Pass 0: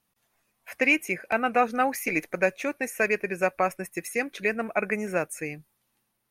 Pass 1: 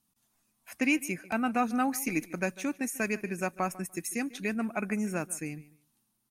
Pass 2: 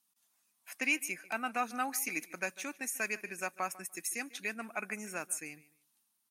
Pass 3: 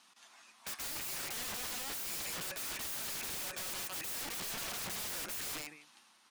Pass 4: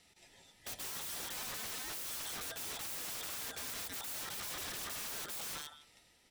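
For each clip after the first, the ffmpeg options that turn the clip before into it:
ffmpeg -i in.wav -filter_complex "[0:a]equalizer=frequency=250:width_type=o:width=1:gain=7,equalizer=frequency=500:width_type=o:width=1:gain=-11,equalizer=frequency=2000:width_type=o:width=1:gain=-8,equalizer=frequency=8000:width_type=o:width=1:gain=5,asplit=2[link_01][link_02];[link_02]adelay=147,lowpass=frequency=4700:poles=1,volume=-19dB,asplit=2[link_03][link_04];[link_04]adelay=147,lowpass=frequency=4700:poles=1,volume=0.22[link_05];[link_01][link_03][link_05]amix=inputs=3:normalize=0,volume=-1.5dB" out.wav
ffmpeg -i in.wav -af "highpass=frequency=1200:poles=1" out.wav
ffmpeg -i in.wav -filter_complex "[0:a]lowpass=6700,asplit=2[link_01][link_02];[link_02]highpass=frequency=720:poles=1,volume=32dB,asoftclip=type=tanh:threshold=-19dB[link_03];[link_01][link_03]amix=inputs=2:normalize=0,lowpass=frequency=2500:poles=1,volume=-6dB,aeval=exprs='(mod(59.6*val(0)+1,2)-1)/59.6':channel_layout=same" out.wav
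ffmpeg -i in.wav -af "afftfilt=real='real(if(lt(b,960),b+48*(1-2*mod(floor(b/48),2)),b),0)':imag='imag(if(lt(b,960),b+48*(1-2*mod(floor(b/48),2)),b),0)':win_size=2048:overlap=0.75,volume=-2dB" out.wav

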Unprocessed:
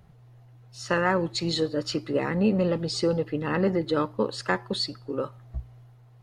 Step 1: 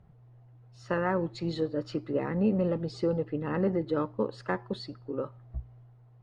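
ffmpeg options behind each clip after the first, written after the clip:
ffmpeg -i in.wav -af "lowpass=frequency=1100:poles=1,volume=-3dB" out.wav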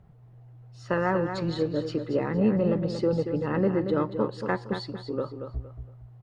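ffmpeg -i in.wav -af "aecho=1:1:231|462|693:0.398|0.111|0.0312,volume=3dB" out.wav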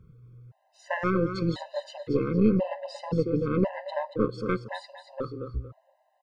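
ffmpeg -i in.wav -af "aeval=exprs='0.251*(cos(1*acos(clip(val(0)/0.251,-1,1)))-cos(1*PI/2))+0.0794*(cos(2*acos(clip(val(0)/0.251,-1,1)))-cos(2*PI/2))':channel_layout=same,afftfilt=real='re*gt(sin(2*PI*0.96*pts/sr)*(1-2*mod(floor(b*sr/1024/520),2)),0)':imag='im*gt(sin(2*PI*0.96*pts/sr)*(1-2*mod(floor(b*sr/1024/520),2)),0)':win_size=1024:overlap=0.75,volume=1.5dB" out.wav

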